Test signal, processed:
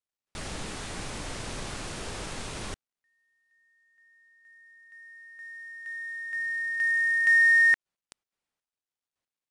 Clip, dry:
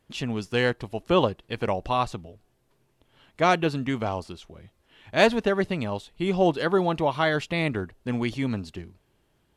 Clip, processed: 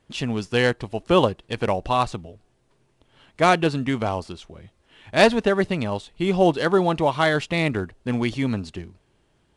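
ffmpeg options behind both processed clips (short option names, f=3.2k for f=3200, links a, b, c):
-af "volume=3.5dB" -ar 22050 -c:a adpcm_ima_wav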